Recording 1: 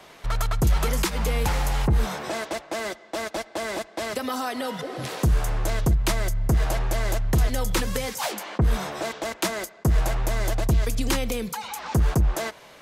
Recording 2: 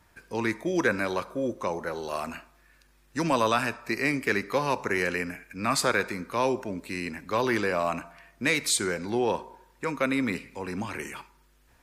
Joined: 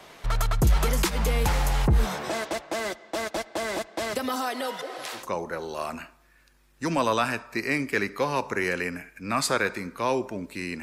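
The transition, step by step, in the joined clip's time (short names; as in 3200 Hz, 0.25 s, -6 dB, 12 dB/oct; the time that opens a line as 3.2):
recording 1
4.35–5.3 HPF 190 Hz -> 1000 Hz
5.21 switch to recording 2 from 1.55 s, crossfade 0.18 s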